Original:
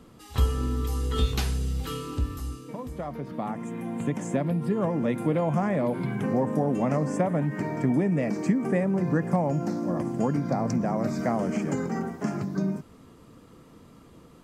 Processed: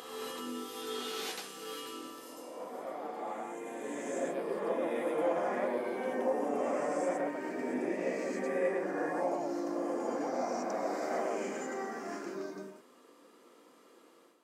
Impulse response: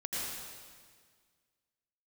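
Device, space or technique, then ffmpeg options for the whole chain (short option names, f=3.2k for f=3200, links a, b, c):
ghost voice: -filter_complex "[0:a]areverse[a];[1:a]atrim=start_sample=2205[b];[a][b]afir=irnorm=-1:irlink=0,areverse,highpass=f=340:w=0.5412,highpass=f=340:w=1.3066,volume=-7.5dB"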